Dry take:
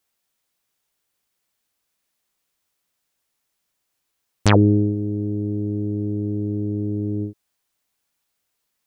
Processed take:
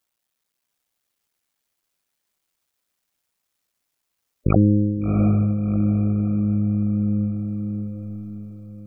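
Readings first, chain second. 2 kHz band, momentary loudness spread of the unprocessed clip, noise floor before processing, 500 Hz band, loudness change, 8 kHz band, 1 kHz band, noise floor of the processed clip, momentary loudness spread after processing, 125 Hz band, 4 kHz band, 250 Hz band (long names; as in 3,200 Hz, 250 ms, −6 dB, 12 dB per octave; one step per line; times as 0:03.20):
−12.0 dB, 10 LU, −76 dBFS, −4.5 dB, +0.5 dB, below −30 dB, −5.0 dB, −79 dBFS, 15 LU, +2.0 dB, below −35 dB, +2.5 dB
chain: sub-harmonics by changed cycles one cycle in 2, muted
gate on every frequency bin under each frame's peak −15 dB strong
feedback delay with all-pass diffusion 698 ms, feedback 46%, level −4.5 dB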